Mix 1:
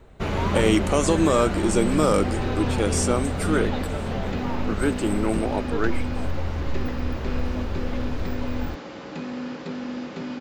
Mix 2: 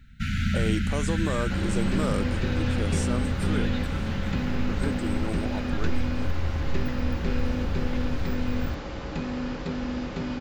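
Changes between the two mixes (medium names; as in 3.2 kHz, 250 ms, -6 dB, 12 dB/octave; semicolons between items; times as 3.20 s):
speech -10.0 dB; first sound: add brick-wall FIR band-stop 270–1300 Hz; second sound: remove Chebyshev high-pass 220 Hz, order 2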